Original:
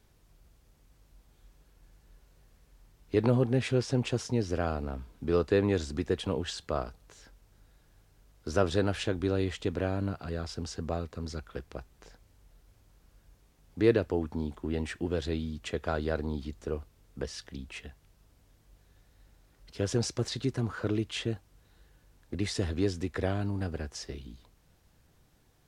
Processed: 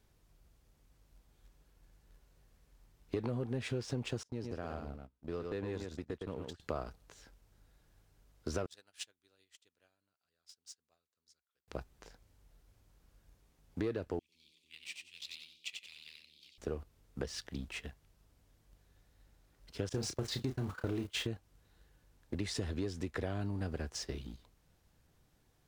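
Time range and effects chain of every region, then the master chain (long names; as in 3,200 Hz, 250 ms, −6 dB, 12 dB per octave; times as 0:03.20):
0:04.23–0:06.60: noise gate −36 dBFS, range −25 dB + single-tap delay 112 ms −7 dB + downward compressor 2 to 1, threshold −45 dBFS
0:08.66–0:11.68: first-order pre-emphasis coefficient 0.97 + expander for the loud parts 2.5 to 1, over −55 dBFS
0:14.19–0:16.58: elliptic high-pass filter 2,300 Hz + high-shelf EQ 7,700 Hz −9.5 dB + echo with shifted repeats 91 ms, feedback 36%, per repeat +88 Hz, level −3.5 dB
0:19.89–0:21.27: converter with a step at zero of −40 dBFS + noise gate −36 dBFS, range −21 dB + double-tracking delay 31 ms −7.5 dB
whole clip: leveller curve on the samples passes 1; downward compressor, threshold −30 dBFS; level −3.5 dB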